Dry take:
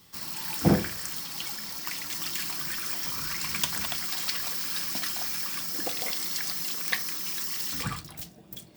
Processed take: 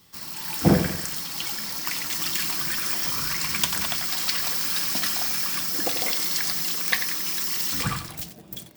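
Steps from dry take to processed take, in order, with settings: AGC gain up to 5.5 dB; lo-fi delay 91 ms, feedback 55%, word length 6-bit, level -9 dB

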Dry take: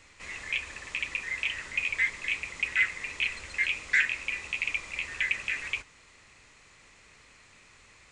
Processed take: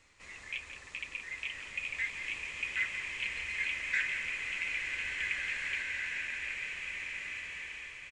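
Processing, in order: echo 0.173 s -10.5 dB; bloom reverb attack 2.08 s, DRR -1 dB; gain -8.5 dB

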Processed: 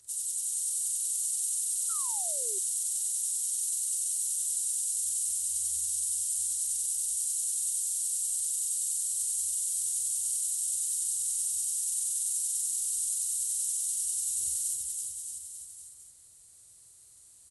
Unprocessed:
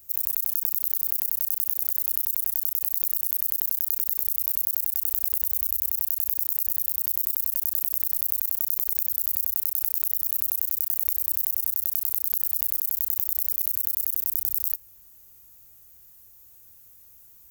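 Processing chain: inharmonic rescaling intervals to 86%; bouncing-ball echo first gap 0.33 s, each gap 0.9×, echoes 5; painted sound fall, 1.89–2.59, 370–1400 Hz -41 dBFS; gain -5.5 dB

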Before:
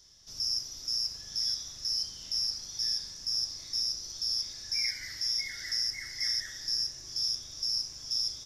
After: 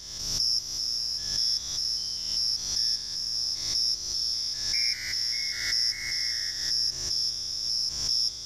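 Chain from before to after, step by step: stepped spectrum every 0.2 s; backwards sustainer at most 45 dB/s; gain +6 dB

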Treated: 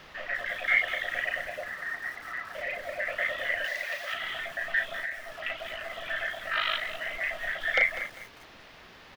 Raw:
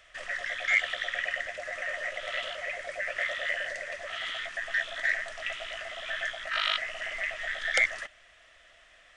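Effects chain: 1.68–2.55 Chebyshev band-pass 810–1900 Hz, order 3; early reflections 36 ms -5 dB, 58 ms -12.5 dB; reverb removal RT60 0.7 s; in parallel at -6 dB: requantised 6-bit, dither triangular; 3.64–4.14 on the sum: tilt +4.5 dB/oct; 4.93–5.36 compressor, threshold -30 dBFS, peak gain reduction 11.5 dB; air absorption 290 m; lo-fi delay 0.198 s, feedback 35%, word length 7-bit, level -12 dB

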